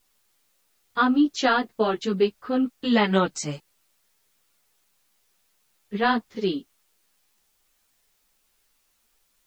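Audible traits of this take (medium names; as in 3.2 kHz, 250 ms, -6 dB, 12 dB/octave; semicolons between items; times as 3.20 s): a quantiser's noise floor 12-bit, dither triangular; a shimmering, thickened sound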